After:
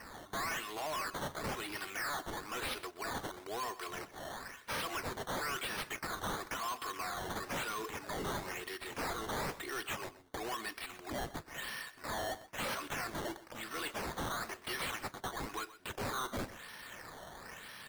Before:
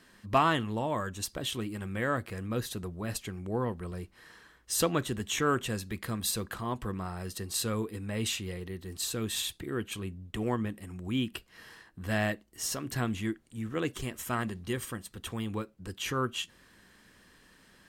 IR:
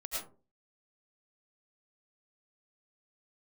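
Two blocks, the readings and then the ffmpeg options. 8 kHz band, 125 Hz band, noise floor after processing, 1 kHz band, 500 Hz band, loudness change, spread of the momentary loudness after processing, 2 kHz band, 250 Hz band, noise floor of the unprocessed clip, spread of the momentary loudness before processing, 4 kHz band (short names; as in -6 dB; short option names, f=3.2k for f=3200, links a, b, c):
-8.0 dB, -13.5 dB, -57 dBFS, -3.5 dB, -7.5 dB, -6.5 dB, 7 LU, -1.5 dB, -12.0 dB, -61 dBFS, 11 LU, -5.0 dB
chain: -filter_complex "[0:a]highpass=930,highshelf=f=5.2k:g=6,aecho=1:1:2.8:0.76,asplit=2[a][b];[b]acompressor=threshold=-40dB:ratio=6,volume=-3dB[c];[a][c]amix=inputs=2:normalize=0,acrusher=samples=12:mix=1:aa=0.000001:lfo=1:lforange=12:lforate=1,alimiter=limit=-22.5dB:level=0:latency=1:release=61,asoftclip=type=tanh:threshold=-39.5dB,asplit=2[d][e];[e]aecho=0:1:126:0.15[f];[d][f]amix=inputs=2:normalize=0,volume=4dB"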